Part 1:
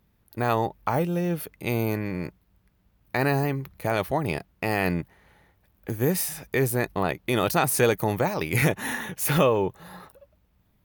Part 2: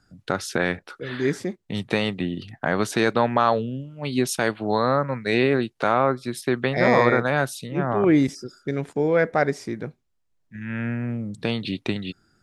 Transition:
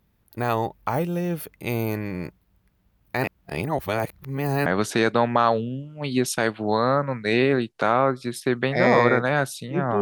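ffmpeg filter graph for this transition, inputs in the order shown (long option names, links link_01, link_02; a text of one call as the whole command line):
ffmpeg -i cue0.wav -i cue1.wav -filter_complex "[0:a]apad=whole_dur=10.01,atrim=end=10.01,asplit=2[link_01][link_02];[link_01]atrim=end=3.242[link_03];[link_02]atrim=start=3.238:end=4.662,asetpts=PTS-STARTPTS,areverse[link_04];[1:a]atrim=start=2.668:end=8.02[link_05];[link_03][link_04]acrossfade=duration=0.004:curve1=hsin:curve2=hsin[link_06];[link_06][link_05]acrossfade=duration=0.004:curve1=hsin:curve2=hsin" out.wav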